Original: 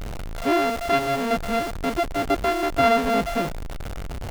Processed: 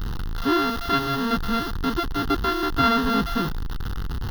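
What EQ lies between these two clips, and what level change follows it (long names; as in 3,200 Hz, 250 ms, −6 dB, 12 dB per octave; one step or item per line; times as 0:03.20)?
phaser with its sweep stopped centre 2,300 Hz, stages 6
+4.5 dB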